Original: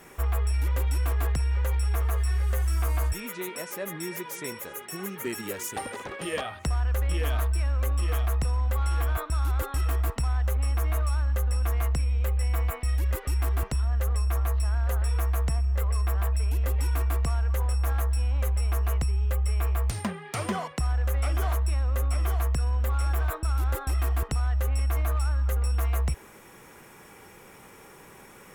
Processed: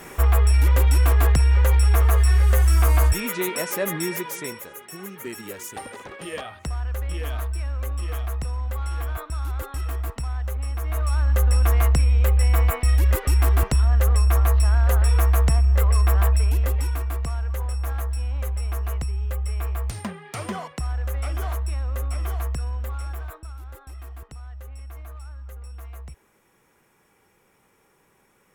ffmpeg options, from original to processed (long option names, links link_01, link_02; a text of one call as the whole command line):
ffmpeg -i in.wav -af "volume=19dB,afade=type=out:start_time=3.9:duration=0.8:silence=0.281838,afade=type=in:start_time=10.83:duration=0.63:silence=0.316228,afade=type=out:start_time=16.25:duration=0.76:silence=0.354813,afade=type=out:start_time=22.47:duration=1.12:silence=0.251189" out.wav